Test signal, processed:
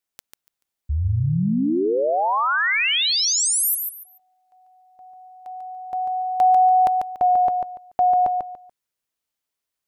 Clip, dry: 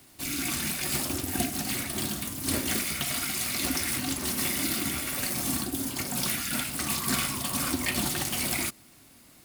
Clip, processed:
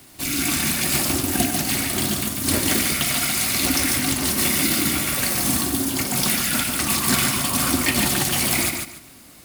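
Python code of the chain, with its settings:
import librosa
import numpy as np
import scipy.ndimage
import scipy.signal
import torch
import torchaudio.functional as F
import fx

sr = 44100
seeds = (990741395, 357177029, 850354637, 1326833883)

y = fx.echo_feedback(x, sr, ms=144, feedback_pct=24, wet_db=-5.5)
y = y * 10.0 ** (7.5 / 20.0)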